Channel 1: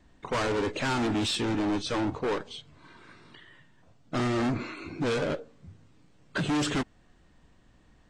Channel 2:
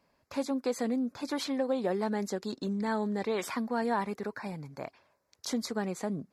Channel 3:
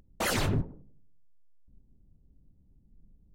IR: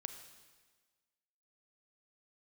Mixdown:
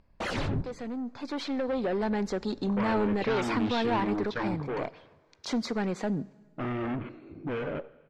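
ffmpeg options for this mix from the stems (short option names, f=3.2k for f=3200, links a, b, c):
-filter_complex "[0:a]afwtdn=0.0126,adelay=2450,volume=-18dB,asplit=2[a][b];[b]volume=-5dB[c];[1:a]asoftclip=type=tanh:threshold=-29.5dB,volume=-6dB,asplit=2[d][e];[e]volume=-8dB[f];[2:a]volume=-3dB[g];[3:a]atrim=start_sample=2205[h];[c][f]amix=inputs=2:normalize=0[i];[i][h]afir=irnorm=-1:irlink=0[j];[a][d][g][j]amix=inputs=4:normalize=0,dynaudnorm=f=410:g=7:m=10.5dB,lowpass=4.1k"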